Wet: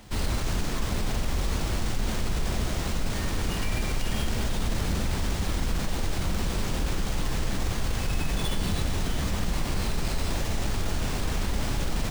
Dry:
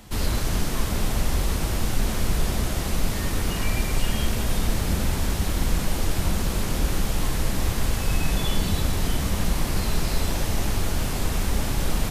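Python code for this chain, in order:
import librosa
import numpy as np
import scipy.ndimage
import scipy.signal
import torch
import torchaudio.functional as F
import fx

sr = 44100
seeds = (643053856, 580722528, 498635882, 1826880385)

p1 = fx.over_compress(x, sr, threshold_db=-23.0, ratio=-1.0)
p2 = x + F.gain(torch.from_numpy(p1), -2.5).numpy()
p3 = fx.sample_hold(p2, sr, seeds[0], rate_hz=13000.0, jitter_pct=0)
y = F.gain(torch.from_numpy(p3), -8.0).numpy()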